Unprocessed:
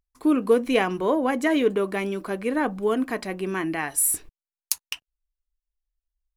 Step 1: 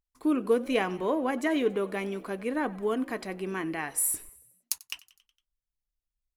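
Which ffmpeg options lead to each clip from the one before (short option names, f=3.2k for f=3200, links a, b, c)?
-filter_complex "[0:a]asplit=6[a][b][c][d][e][f];[b]adelay=92,afreqshift=56,volume=-21.5dB[g];[c]adelay=184,afreqshift=112,volume=-25.8dB[h];[d]adelay=276,afreqshift=168,volume=-30.1dB[i];[e]adelay=368,afreqshift=224,volume=-34.4dB[j];[f]adelay=460,afreqshift=280,volume=-38.7dB[k];[a][g][h][i][j][k]amix=inputs=6:normalize=0,volume=-5.5dB"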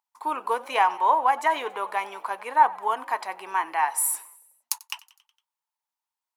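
-af "highpass=f=900:t=q:w=8.1,volume=2.5dB"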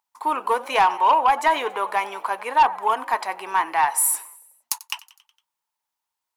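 -af "asoftclip=type=tanh:threshold=-15dB,volume=5.5dB"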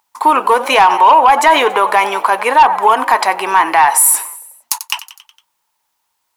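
-af "alimiter=level_in=16.5dB:limit=-1dB:release=50:level=0:latency=1,volume=-1dB"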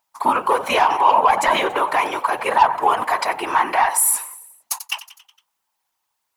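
-af "afftfilt=real='hypot(re,im)*cos(2*PI*random(0))':imag='hypot(re,im)*sin(2*PI*random(1))':win_size=512:overlap=0.75,volume=-1dB"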